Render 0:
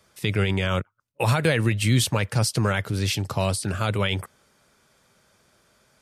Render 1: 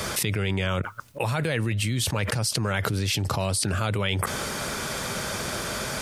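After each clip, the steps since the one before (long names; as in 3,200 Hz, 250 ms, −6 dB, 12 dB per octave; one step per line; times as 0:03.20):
envelope flattener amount 100%
level −8.5 dB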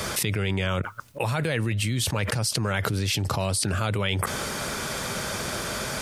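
no processing that can be heard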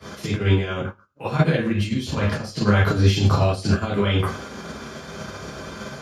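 convolution reverb RT60 0.45 s, pre-delay 3 ms, DRR −6 dB
expander for the loud parts 2.5 to 1, over −28 dBFS
level −7.5 dB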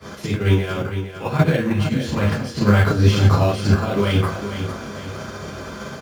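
repeating echo 456 ms, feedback 44%, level −9.5 dB
in parallel at −12 dB: sample-rate reduction 6,100 Hz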